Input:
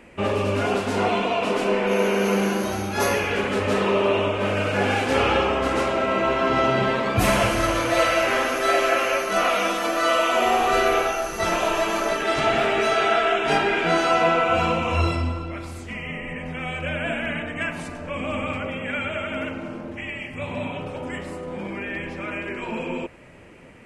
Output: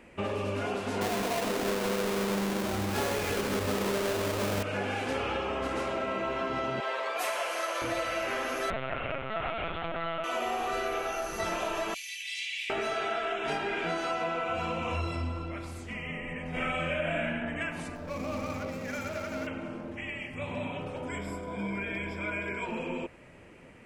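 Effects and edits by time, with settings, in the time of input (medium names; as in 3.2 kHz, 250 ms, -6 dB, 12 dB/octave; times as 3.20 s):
1.01–4.63 s: square wave that keeps the level
6.80–7.82 s: high-pass 480 Hz 24 dB/octave
8.70–10.24 s: LPC vocoder at 8 kHz pitch kept
11.94–12.70 s: steep high-pass 2.1 kHz 72 dB/octave
16.50–17.25 s: reverb throw, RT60 1 s, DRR -11.5 dB
17.95–19.47 s: median filter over 15 samples
21.08–22.66 s: rippled EQ curve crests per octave 1.7, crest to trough 15 dB
whole clip: compression, threshold -23 dBFS; trim -5.5 dB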